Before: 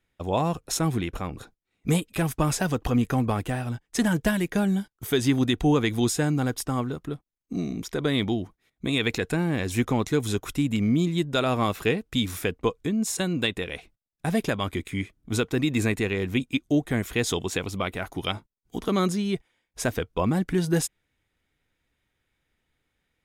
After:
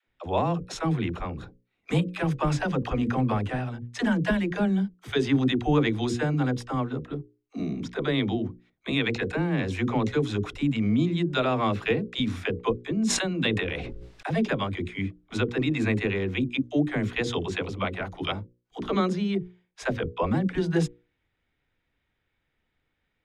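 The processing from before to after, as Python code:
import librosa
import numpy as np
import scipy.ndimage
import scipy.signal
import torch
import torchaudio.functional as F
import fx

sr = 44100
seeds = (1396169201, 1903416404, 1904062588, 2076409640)

y = scipy.signal.sosfilt(scipy.signal.butter(2, 3700.0, 'lowpass', fs=sr, output='sos'), x)
y = fx.hum_notches(y, sr, base_hz=60, count=9)
y = fx.dispersion(y, sr, late='lows', ms=65.0, hz=350.0)
y = fx.sustainer(y, sr, db_per_s=30.0, at=(13.01, 14.44))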